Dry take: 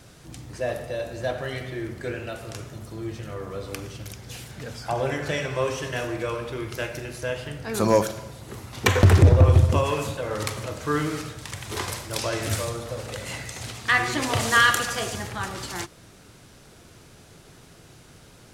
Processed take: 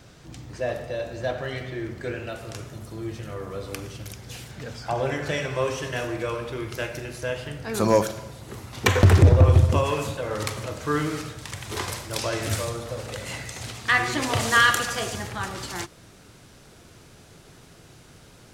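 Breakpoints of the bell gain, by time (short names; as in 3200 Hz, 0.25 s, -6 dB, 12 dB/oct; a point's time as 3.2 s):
bell 11000 Hz 0.66 oct
1.78 s -10.5 dB
2.78 s +0.5 dB
4.17 s +0.5 dB
4.82 s -9.5 dB
5.36 s -1.5 dB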